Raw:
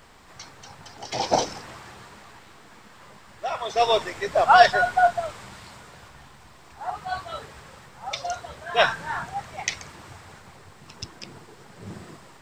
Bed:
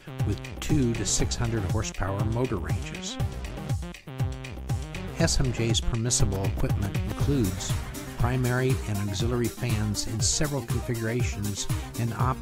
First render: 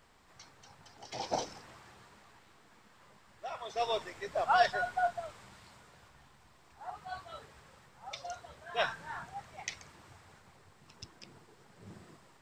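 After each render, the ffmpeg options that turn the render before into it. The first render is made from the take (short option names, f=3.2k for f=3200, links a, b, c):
-af "volume=-12.5dB"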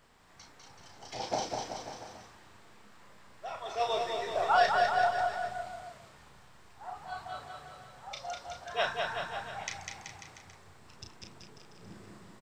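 -filter_complex "[0:a]asplit=2[a][b];[b]adelay=34,volume=-5.5dB[c];[a][c]amix=inputs=2:normalize=0,aecho=1:1:200|380|542|687.8|819:0.631|0.398|0.251|0.158|0.1"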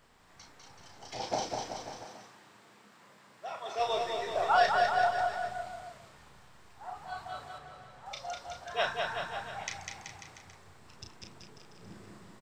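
-filter_complex "[0:a]asettb=1/sr,asplit=3[a][b][c];[a]atrim=end=2.054[d];[b]atrim=start=2.05:end=3.79,asetpts=PTS-STARTPTS,afade=t=in:d=0.004:c=qsin,afade=t=out:st=1.736:d=0.004:c=qsin,highpass=f=130:w=0.5412,highpass=f=130:w=1.3066[e];[c]atrim=start=3.786[f];[d][e]acrossfade=d=0.004:c1=hsin:c2=qsin[g];[g][f]acrossfade=d=0.004:c1=qsin:c2=hsin,asettb=1/sr,asplit=3[h][i][j];[h]atrim=end=7.584[k];[i]atrim=start=7.58:end=8.06,asetpts=PTS-STARTPTS,afade=t=in:d=0.004:c=qsin,afade=t=out:st=0.476:d=0.004:c=qsin,highshelf=f=5.3k:g=-8[l];[j]atrim=start=8.056[m];[k][l]acrossfade=d=0.004:c1=hsin:c2=qsin[n];[n][m]acrossfade=d=0.004:c1=qsin:c2=hsin"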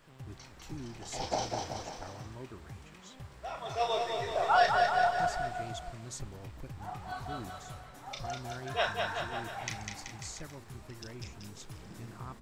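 -filter_complex "[1:a]volume=-19dB[a];[0:a][a]amix=inputs=2:normalize=0"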